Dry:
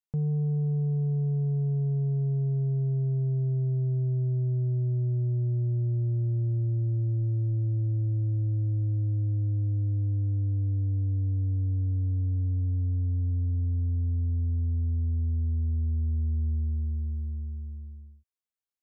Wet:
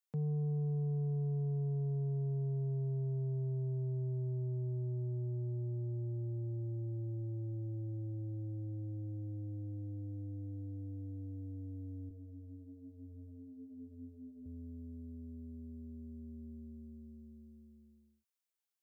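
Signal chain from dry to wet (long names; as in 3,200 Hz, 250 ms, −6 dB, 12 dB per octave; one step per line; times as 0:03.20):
high-pass filter 130 Hz 24 dB per octave
spectral tilt +1.5 dB per octave
0:12.09–0:14.46: multi-voice chorus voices 6, 1.2 Hz, delay 18 ms, depth 3 ms
level −2.5 dB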